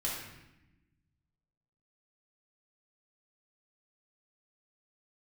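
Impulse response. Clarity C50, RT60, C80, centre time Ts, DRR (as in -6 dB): 1.0 dB, 0.90 s, 4.5 dB, 61 ms, -5.0 dB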